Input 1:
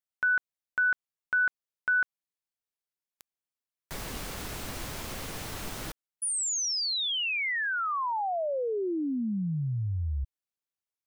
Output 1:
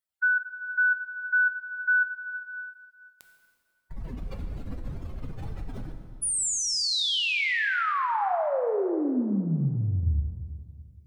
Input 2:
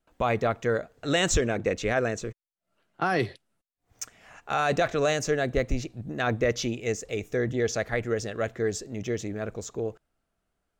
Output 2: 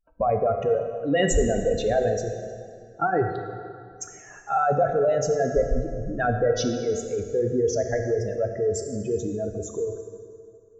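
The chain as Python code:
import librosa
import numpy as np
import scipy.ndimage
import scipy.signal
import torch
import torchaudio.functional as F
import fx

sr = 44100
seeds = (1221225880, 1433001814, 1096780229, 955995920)

y = fx.spec_expand(x, sr, power=2.7)
y = fx.peak_eq(y, sr, hz=6300.0, db=-2.5, octaves=0.45)
y = fx.rev_plate(y, sr, seeds[0], rt60_s=2.3, hf_ratio=0.75, predelay_ms=0, drr_db=4.5)
y = y * 10.0 ** (3.0 / 20.0)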